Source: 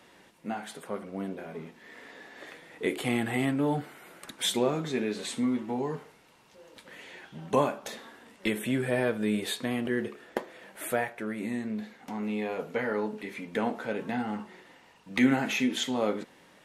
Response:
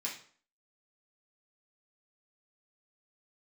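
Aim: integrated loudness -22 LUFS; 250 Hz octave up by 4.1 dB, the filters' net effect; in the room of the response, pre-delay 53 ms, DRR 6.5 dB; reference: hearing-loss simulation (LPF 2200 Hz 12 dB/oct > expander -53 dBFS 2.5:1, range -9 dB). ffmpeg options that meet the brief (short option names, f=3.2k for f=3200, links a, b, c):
-filter_complex "[0:a]equalizer=f=250:t=o:g=4.5,asplit=2[a][b];[1:a]atrim=start_sample=2205,adelay=53[c];[b][c]afir=irnorm=-1:irlink=0,volume=-8dB[d];[a][d]amix=inputs=2:normalize=0,lowpass=2.2k,agate=range=-9dB:threshold=-53dB:ratio=2.5,volume=5.5dB"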